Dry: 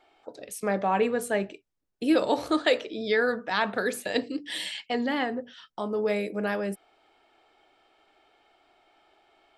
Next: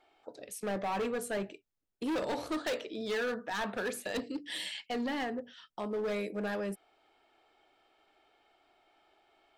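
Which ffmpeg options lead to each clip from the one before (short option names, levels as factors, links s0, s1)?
-af "asoftclip=type=hard:threshold=0.0562,volume=0.562"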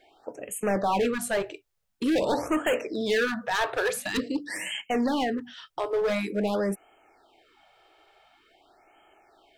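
-af "afftfilt=real='re*(1-between(b*sr/1024,200*pow(4700/200,0.5+0.5*sin(2*PI*0.47*pts/sr))/1.41,200*pow(4700/200,0.5+0.5*sin(2*PI*0.47*pts/sr))*1.41))':imag='im*(1-between(b*sr/1024,200*pow(4700/200,0.5+0.5*sin(2*PI*0.47*pts/sr))/1.41,200*pow(4700/200,0.5+0.5*sin(2*PI*0.47*pts/sr))*1.41))':win_size=1024:overlap=0.75,volume=2.82"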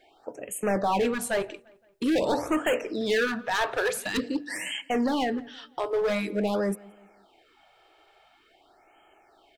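-filter_complex "[0:a]asplit=2[s0][s1];[s1]adelay=172,lowpass=f=3700:p=1,volume=0.0708,asplit=2[s2][s3];[s3]adelay=172,lowpass=f=3700:p=1,volume=0.48,asplit=2[s4][s5];[s5]adelay=172,lowpass=f=3700:p=1,volume=0.48[s6];[s0][s2][s4][s6]amix=inputs=4:normalize=0"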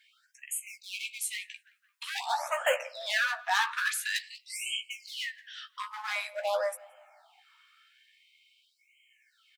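-filter_complex "[0:a]lowshelf=f=300:g=-6,asplit=2[s0][s1];[s1]adelay=15,volume=0.501[s2];[s0][s2]amix=inputs=2:normalize=0,afftfilt=real='re*gte(b*sr/1024,480*pow(2200/480,0.5+0.5*sin(2*PI*0.26*pts/sr)))':imag='im*gte(b*sr/1024,480*pow(2200/480,0.5+0.5*sin(2*PI*0.26*pts/sr)))':win_size=1024:overlap=0.75"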